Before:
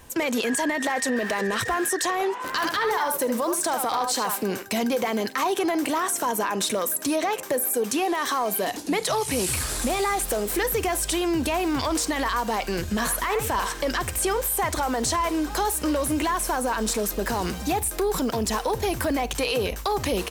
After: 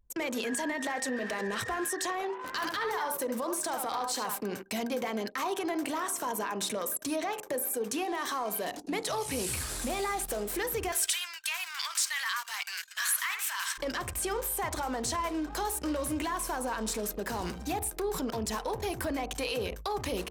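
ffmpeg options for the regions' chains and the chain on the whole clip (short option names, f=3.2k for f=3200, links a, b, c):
-filter_complex "[0:a]asettb=1/sr,asplit=3[a][b][c];[a]atrim=end=10.924[d];[b]atrim=start=10.92:end=13.78,asetpts=PTS-STARTPTS,afade=t=in:d=0.004:c=qsin,afade=t=out:st=2.856:d=0.004:c=qsin,highpass=f=1.4k:w=0.5412,highpass=f=1.4k:w=1.3066,acontrast=52[e];[c]atrim=start=13.776[f];[d][e]acrossfade=d=0.004:c1=hsin:c2=qsin[g];[g][f]acrossfade=d=0.004:c1=qsin:c2=hsin,bandreject=f=47.63:t=h:w=4,bandreject=f=95.26:t=h:w=4,bandreject=f=142.89:t=h:w=4,bandreject=f=190.52:t=h:w=4,bandreject=f=238.15:t=h:w=4,bandreject=f=285.78:t=h:w=4,bandreject=f=333.41:t=h:w=4,bandreject=f=381.04:t=h:w=4,bandreject=f=428.67:t=h:w=4,bandreject=f=476.3:t=h:w=4,bandreject=f=523.93:t=h:w=4,bandreject=f=571.56:t=h:w=4,bandreject=f=619.19:t=h:w=4,bandreject=f=666.82:t=h:w=4,bandreject=f=714.45:t=h:w=4,bandreject=f=762.08:t=h:w=4,bandreject=f=809.71:t=h:w=4,bandreject=f=857.34:t=h:w=4,bandreject=f=904.97:t=h:w=4,bandreject=f=952.6:t=h:w=4,bandreject=f=1.00023k:t=h:w=4,bandreject=f=1.04786k:t=h:w=4,bandreject=f=1.09549k:t=h:w=4,bandreject=f=1.14312k:t=h:w=4,bandreject=f=1.19075k:t=h:w=4,bandreject=f=1.23838k:t=h:w=4,bandreject=f=1.28601k:t=h:w=4,bandreject=f=1.33364k:t=h:w=4,bandreject=f=1.38127k:t=h:w=4,anlmdn=6.31,volume=-7.5dB"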